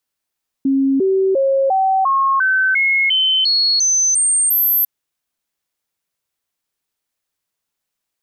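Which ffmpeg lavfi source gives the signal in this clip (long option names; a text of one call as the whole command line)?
ffmpeg -f lavfi -i "aevalsrc='0.251*clip(min(mod(t,0.35),0.35-mod(t,0.35))/0.005,0,1)*sin(2*PI*271*pow(2,floor(t/0.35)/2)*mod(t,0.35))':duration=4.2:sample_rate=44100" out.wav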